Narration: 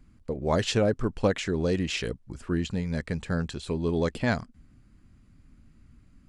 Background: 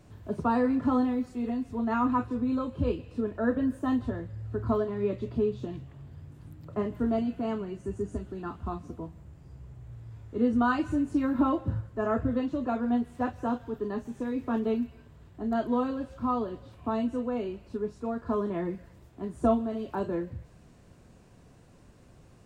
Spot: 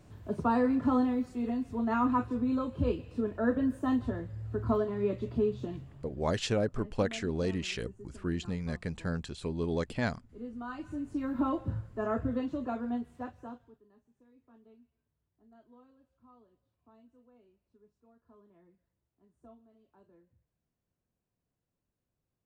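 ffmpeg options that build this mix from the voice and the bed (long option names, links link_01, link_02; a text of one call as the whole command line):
ffmpeg -i stem1.wav -i stem2.wav -filter_complex "[0:a]adelay=5750,volume=-5.5dB[link_01];[1:a]volume=11.5dB,afade=type=out:start_time=5.72:duration=0.73:silence=0.16788,afade=type=in:start_time=10.62:duration=0.97:silence=0.223872,afade=type=out:start_time=12.51:duration=1.31:silence=0.0421697[link_02];[link_01][link_02]amix=inputs=2:normalize=0" out.wav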